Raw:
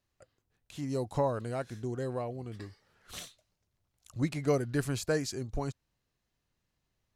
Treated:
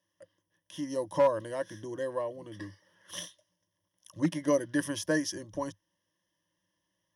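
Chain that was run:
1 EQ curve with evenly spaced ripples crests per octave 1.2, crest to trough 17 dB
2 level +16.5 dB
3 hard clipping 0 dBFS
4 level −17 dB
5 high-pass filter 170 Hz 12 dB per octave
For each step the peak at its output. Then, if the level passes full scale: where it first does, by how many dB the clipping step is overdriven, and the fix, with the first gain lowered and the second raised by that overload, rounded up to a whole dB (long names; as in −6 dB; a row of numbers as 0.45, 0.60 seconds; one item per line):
−12.5, +4.0, 0.0, −17.0, −14.5 dBFS
step 2, 4.0 dB
step 2 +12.5 dB, step 4 −13 dB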